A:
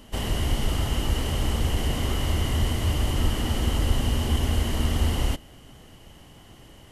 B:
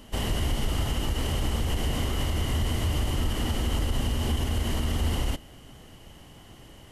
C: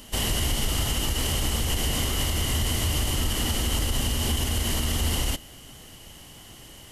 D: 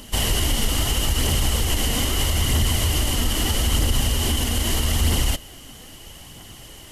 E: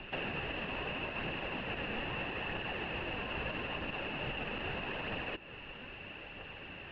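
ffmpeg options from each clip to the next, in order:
ffmpeg -i in.wav -af "alimiter=limit=-18dB:level=0:latency=1:release=61" out.wav
ffmpeg -i in.wav -af "highshelf=frequency=2800:gain=12" out.wav
ffmpeg -i in.wav -af "aphaser=in_gain=1:out_gain=1:delay=4.4:decay=0.29:speed=0.78:type=triangular,volume=3.5dB" out.wav
ffmpeg -i in.wav -filter_complex "[0:a]acrossover=split=440|1500[link_01][link_02][link_03];[link_01]acompressor=threshold=-33dB:ratio=4[link_04];[link_02]acompressor=threshold=-41dB:ratio=4[link_05];[link_03]acompressor=threshold=-37dB:ratio=4[link_06];[link_04][link_05][link_06]amix=inputs=3:normalize=0,highpass=frequency=300:width_type=q:width=0.5412,highpass=frequency=300:width_type=q:width=1.307,lowpass=frequency=3100:width_type=q:width=0.5176,lowpass=frequency=3100:width_type=q:width=0.7071,lowpass=frequency=3100:width_type=q:width=1.932,afreqshift=-250" out.wav

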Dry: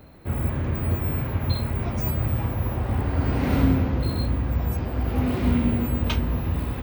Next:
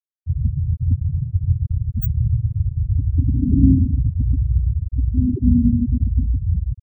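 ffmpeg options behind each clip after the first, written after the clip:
ffmpeg -i in.wav -af "afftfilt=real='re*gte(hypot(re,im),0.355)':imag='im*gte(hypot(re,im),0.355)':win_size=1024:overlap=0.75,volume=7dB" out.wav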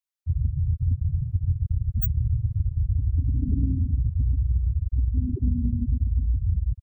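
ffmpeg -i in.wav -af "equalizer=frequency=240:width_type=o:width=2.5:gain=-11,acompressor=threshold=-22dB:ratio=6,volume=3dB" out.wav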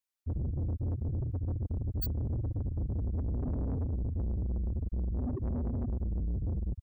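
ffmpeg -i in.wav -af "asoftclip=type=tanh:threshold=-30dB" out.wav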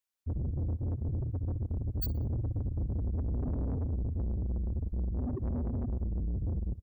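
ffmpeg -i in.wav -af "aecho=1:1:62|124|186:0.1|0.04|0.016" out.wav

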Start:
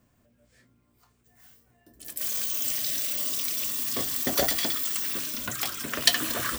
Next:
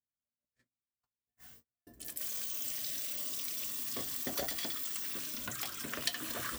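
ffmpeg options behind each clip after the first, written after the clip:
ffmpeg -i in.wav -af "acompressor=threshold=-43dB:ratio=2,agate=range=-41dB:threshold=-57dB:ratio=16:detection=peak" out.wav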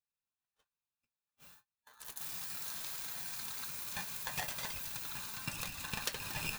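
ffmpeg -i in.wav -af "flanger=delay=1.6:depth=3:regen=67:speed=1.6:shape=sinusoidal,superequalizer=7b=2.24:10b=3.16:12b=2.24,aeval=exprs='val(0)*sgn(sin(2*PI*1300*n/s))':channel_layout=same" out.wav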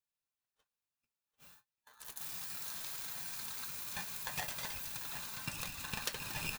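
ffmpeg -i in.wav -af "aecho=1:1:742:0.237,volume=-1dB" out.wav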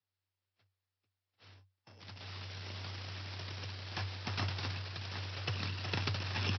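ffmpeg -i in.wav -af "aresample=11025,aeval=exprs='abs(val(0))':channel_layout=same,aresample=44100,afreqshift=95,volume=7dB" out.wav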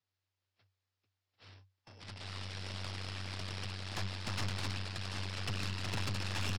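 ffmpeg -i in.wav -af "aresample=16000,asoftclip=type=tanh:threshold=-35.5dB,aresample=44100,aeval=exprs='0.0282*(cos(1*acos(clip(val(0)/0.0282,-1,1)))-cos(1*PI/2))+0.00794*(cos(4*acos(clip(val(0)/0.0282,-1,1)))-cos(4*PI/2))':channel_layout=same,volume=2dB" out.wav

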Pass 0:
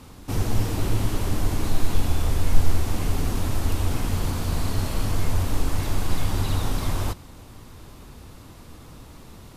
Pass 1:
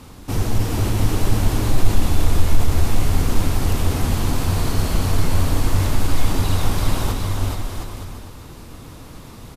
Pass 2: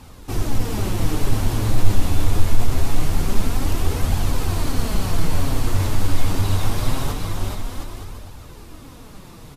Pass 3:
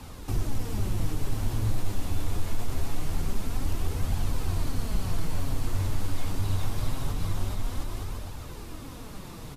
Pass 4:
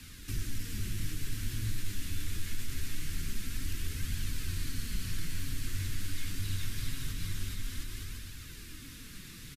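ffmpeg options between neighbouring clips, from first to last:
ffmpeg -i in.wav -filter_complex "[0:a]acontrast=45,asplit=2[link_01][link_02];[link_02]aecho=0:1:420|714|919.8|1064|1165:0.631|0.398|0.251|0.158|0.1[link_03];[link_01][link_03]amix=inputs=2:normalize=0,volume=-2dB" out.wav
ffmpeg -i in.wav -af "flanger=delay=1.1:depth=9.9:regen=49:speed=0.24:shape=triangular,volume=2dB" out.wav
ffmpeg -i in.wav -filter_complex "[0:a]acrossover=split=180|5900[link_01][link_02][link_03];[link_01]acompressor=threshold=-22dB:ratio=4[link_04];[link_02]acompressor=threshold=-40dB:ratio=4[link_05];[link_03]acompressor=threshold=-49dB:ratio=4[link_06];[link_04][link_05][link_06]amix=inputs=3:normalize=0" out.wav
ffmpeg -i in.wav -af "firequalizer=gain_entry='entry(270,0);entry(700,-22);entry(1600,8)':delay=0.05:min_phase=1,volume=-7.5dB" out.wav

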